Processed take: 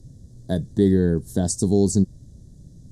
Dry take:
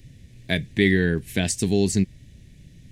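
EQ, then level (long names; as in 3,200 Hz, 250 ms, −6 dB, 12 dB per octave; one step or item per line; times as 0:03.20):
Butterworth band-reject 2,400 Hz, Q 0.54
low-pass filter 10,000 Hz 12 dB per octave
+2.5 dB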